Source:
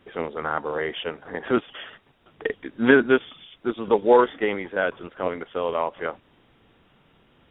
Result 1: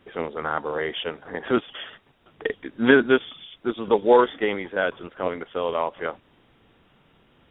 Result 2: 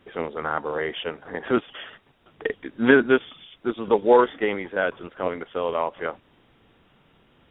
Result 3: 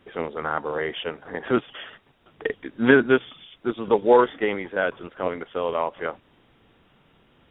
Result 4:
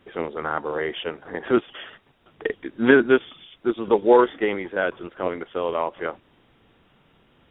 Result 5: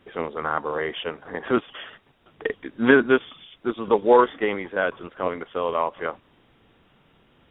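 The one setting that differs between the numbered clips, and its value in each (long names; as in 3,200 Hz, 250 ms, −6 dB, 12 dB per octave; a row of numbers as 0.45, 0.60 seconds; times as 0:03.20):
dynamic equaliser, frequency: 3,400, 8,700, 130, 350, 1,100 Hertz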